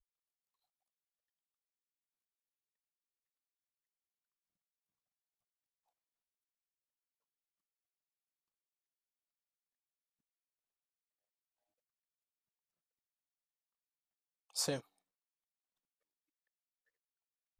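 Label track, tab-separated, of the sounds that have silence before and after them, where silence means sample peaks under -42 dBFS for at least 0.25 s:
14.560000	14.790000	sound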